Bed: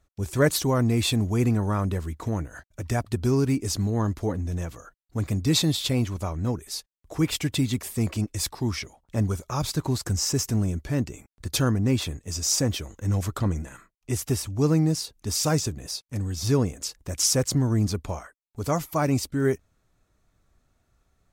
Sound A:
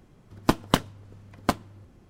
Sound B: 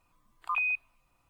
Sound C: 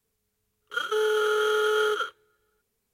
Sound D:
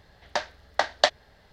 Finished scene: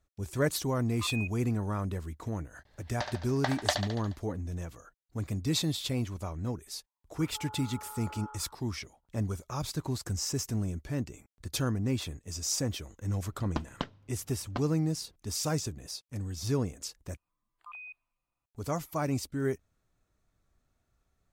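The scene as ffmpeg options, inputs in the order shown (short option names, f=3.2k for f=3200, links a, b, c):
-filter_complex "[2:a]asplit=2[a][b];[0:a]volume=-7.5dB[c];[4:a]aecho=1:1:71|142|213|284|355|426|497|568:0.447|0.264|0.155|0.0917|0.0541|0.0319|0.0188|0.0111[d];[3:a]asuperpass=centerf=910:order=4:qfactor=4.4[e];[1:a]lowpass=f=5.3k:w=0.5412,lowpass=f=5.3k:w=1.3066[f];[c]asplit=2[g][h];[g]atrim=end=17.174[i];[b]atrim=end=1.29,asetpts=PTS-STARTPTS,volume=-16.5dB[j];[h]atrim=start=18.456[k];[a]atrim=end=1.29,asetpts=PTS-STARTPTS,volume=-9.5dB,afade=t=in:d=0.004:c=hsin,afade=t=out:st=1.286:d=0.004:c=hsin,adelay=520[l];[d]atrim=end=1.52,asetpts=PTS-STARTPTS,volume=-8.5dB,afade=t=in:d=0.004:c=hsin,afade=t=out:st=1.516:d=0.004:c=hsin,adelay=2650[m];[e]atrim=end=2.93,asetpts=PTS-STARTPTS,volume=-2dB,afade=t=in:d=0.004:c=hsin,afade=t=out:st=2.926:d=0.004:c=hsin,adelay=6430[n];[f]atrim=end=2.09,asetpts=PTS-STARTPTS,volume=-13.5dB,afade=t=in:d=0.004:c=hsin,afade=t=out:st=2.086:d=0.004:c=hsin,adelay=13070[o];[i][j]acrossfade=d=0.004:c1=hsin:c2=hsin[p];[p][k]acrossfade=d=0.004:c1=hsin:c2=hsin[q];[q][l][m][n][o]amix=inputs=5:normalize=0"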